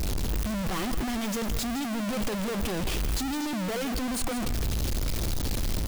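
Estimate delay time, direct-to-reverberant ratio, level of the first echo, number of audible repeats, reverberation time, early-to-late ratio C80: 0.163 s, none, -11.5 dB, 1, none, none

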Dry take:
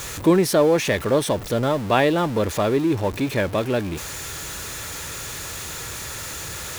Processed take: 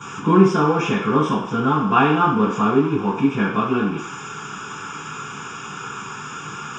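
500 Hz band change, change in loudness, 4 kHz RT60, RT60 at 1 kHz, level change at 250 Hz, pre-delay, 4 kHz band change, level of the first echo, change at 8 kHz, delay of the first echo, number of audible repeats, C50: -2.0 dB, +4.0 dB, 0.65 s, 0.65 s, +4.5 dB, 3 ms, -3.5 dB, none, -9.0 dB, none, none, 3.5 dB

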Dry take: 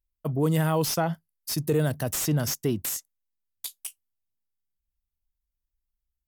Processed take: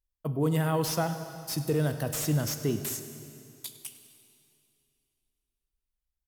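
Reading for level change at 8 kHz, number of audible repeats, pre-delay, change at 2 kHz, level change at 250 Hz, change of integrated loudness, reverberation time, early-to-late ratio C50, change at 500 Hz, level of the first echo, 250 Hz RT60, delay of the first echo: -4.0 dB, 1, 7 ms, -2.5 dB, -2.5 dB, -3.0 dB, 2.7 s, 8.5 dB, -3.0 dB, -17.5 dB, 2.8 s, 0.1 s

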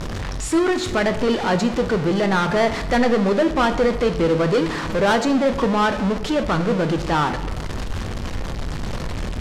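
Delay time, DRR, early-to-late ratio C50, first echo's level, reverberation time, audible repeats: none, 8.0 dB, 11.5 dB, none, 1.1 s, none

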